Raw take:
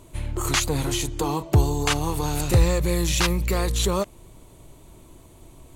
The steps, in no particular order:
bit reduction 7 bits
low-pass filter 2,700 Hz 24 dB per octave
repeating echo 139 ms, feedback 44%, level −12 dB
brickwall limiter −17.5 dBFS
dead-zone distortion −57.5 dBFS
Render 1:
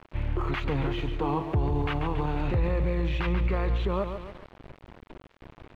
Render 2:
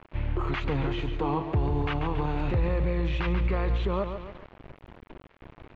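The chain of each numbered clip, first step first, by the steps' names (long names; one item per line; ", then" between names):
repeating echo, then bit reduction, then brickwall limiter, then low-pass filter, then dead-zone distortion
repeating echo, then brickwall limiter, then bit reduction, then dead-zone distortion, then low-pass filter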